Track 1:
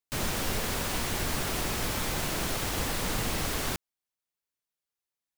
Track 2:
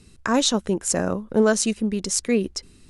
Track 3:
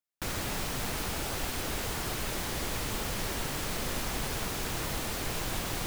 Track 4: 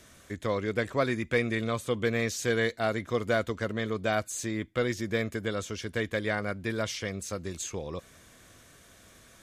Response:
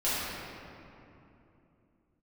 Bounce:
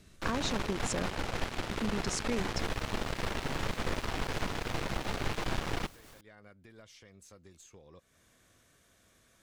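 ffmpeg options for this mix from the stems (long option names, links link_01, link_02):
-filter_complex "[0:a]adelay=2450,volume=-18dB[link_01];[1:a]lowpass=6000,acompressor=threshold=-23dB:ratio=6,volume=-7.5dB,asplit=3[link_02][link_03][link_04];[link_02]atrim=end=1.06,asetpts=PTS-STARTPTS,afade=type=out:start_time=1.056:duration=0.004:curve=hsin[link_05];[link_03]atrim=start=1.06:end=1.71,asetpts=PTS-STARTPTS,volume=0[link_06];[link_04]atrim=start=1.71,asetpts=PTS-STARTPTS,afade=type=in:duration=0.004:curve=hsin[link_07];[link_05][link_06][link_07]concat=n=3:v=0:a=1[link_08];[2:a]adynamicsmooth=sensitivity=6.5:basefreq=2300,aeval=exprs='0.0891*(cos(1*acos(clip(val(0)/0.0891,-1,1)))-cos(1*PI/2))+0.0112*(cos(3*acos(clip(val(0)/0.0891,-1,1)))-cos(3*PI/2))+0.0141*(cos(6*acos(clip(val(0)/0.0891,-1,1)))-cos(6*PI/2))':channel_layout=same,volume=1.5dB[link_09];[3:a]acompressor=threshold=-46dB:ratio=2,volume=-10.5dB[link_10];[link_01][link_10]amix=inputs=2:normalize=0,aeval=exprs='0.0251*(cos(1*acos(clip(val(0)/0.0251,-1,1)))-cos(1*PI/2))+0.000708*(cos(8*acos(clip(val(0)/0.0251,-1,1)))-cos(8*PI/2))':channel_layout=same,alimiter=level_in=20dB:limit=-24dB:level=0:latency=1:release=189,volume=-20dB,volume=0dB[link_11];[link_08][link_09][link_11]amix=inputs=3:normalize=0"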